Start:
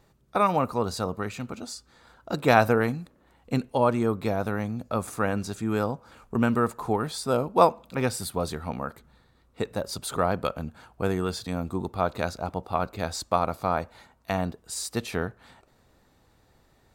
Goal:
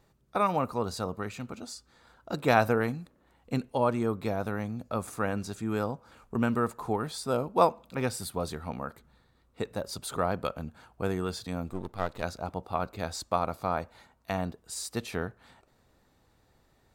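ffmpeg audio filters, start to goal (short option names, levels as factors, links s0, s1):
-filter_complex "[0:a]asettb=1/sr,asplit=3[s0][s1][s2];[s0]atrim=end=11.704[s3];[s1]atrim=start=11.7:end=12.23,asetpts=PTS-STARTPTS,afade=t=in:d=0.004:c=qsin,afade=t=out:st=0.526:d=0.004:c=qsin,aeval=exprs='if(lt(val(0),0),0.251*val(0),val(0))':c=same[s4];[s2]atrim=start=12.226[s5];[s3][s4]acrossfade=d=0.004:c1=hsin:c2=qsin[s6];[s6][s5]acrossfade=d=0.004:c1=qsin:c2=hsin,volume=0.631"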